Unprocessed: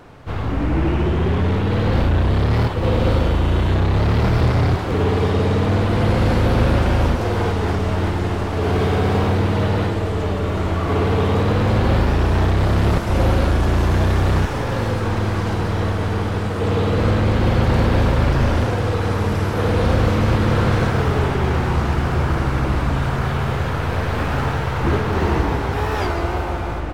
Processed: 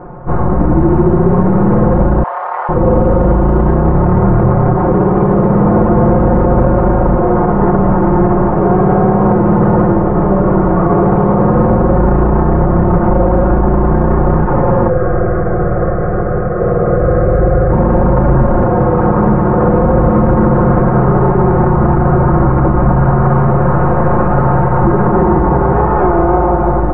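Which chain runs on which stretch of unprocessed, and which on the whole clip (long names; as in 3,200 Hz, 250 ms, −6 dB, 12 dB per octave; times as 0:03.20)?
0:02.23–0:02.69: inverse Chebyshev high-pass filter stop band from 280 Hz, stop band 50 dB + parametric band 5,300 Hz +11.5 dB 0.4 octaves
0:14.89–0:17.72: high-shelf EQ 5,600 Hz −8.5 dB + phaser with its sweep stopped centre 930 Hz, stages 6
whole clip: low-pass filter 1,200 Hz 24 dB per octave; comb filter 5.6 ms, depth 90%; boost into a limiter +12.5 dB; level −1 dB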